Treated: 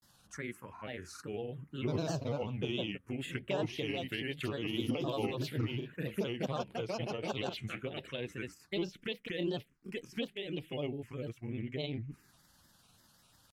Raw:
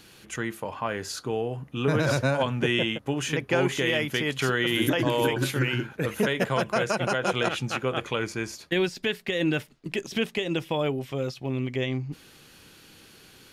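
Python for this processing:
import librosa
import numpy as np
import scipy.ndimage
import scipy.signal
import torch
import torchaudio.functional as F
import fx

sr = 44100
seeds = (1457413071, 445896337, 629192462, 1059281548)

y = fx.env_phaser(x, sr, low_hz=360.0, high_hz=1800.0, full_db=-21.0)
y = fx.granulator(y, sr, seeds[0], grain_ms=100.0, per_s=20.0, spray_ms=22.0, spread_st=3)
y = F.gain(torch.from_numpy(y), -8.0).numpy()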